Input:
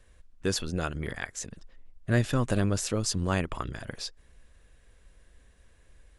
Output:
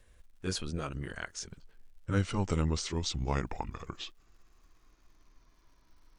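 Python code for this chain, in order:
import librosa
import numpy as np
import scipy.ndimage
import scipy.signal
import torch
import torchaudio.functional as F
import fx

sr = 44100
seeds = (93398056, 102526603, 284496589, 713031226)

y = fx.pitch_glide(x, sr, semitones=-9.5, runs='starting unshifted')
y = fx.dmg_crackle(y, sr, seeds[0], per_s=210.0, level_db=-58.0)
y = y * librosa.db_to_amplitude(-3.0)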